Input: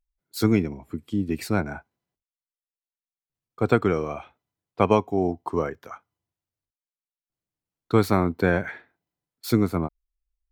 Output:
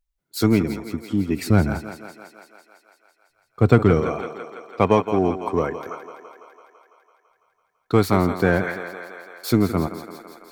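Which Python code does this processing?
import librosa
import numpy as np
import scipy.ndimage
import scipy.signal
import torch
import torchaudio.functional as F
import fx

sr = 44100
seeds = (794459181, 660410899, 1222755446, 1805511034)

p1 = fx.low_shelf(x, sr, hz=190.0, db=11.5, at=(1.5, 4.01))
p2 = fx.echo_thinned(p1, sr, ms=167, feedback_pct=74, hz=280.0, wet_db=-11)
p3 = np.clip(p2, -10.0 ** (-17.0 / 20.0), 10.0 ** (-17.0 / 20.0))
y = p2 + F.gain(torch.from_numpy(p3), -6.0).numpy()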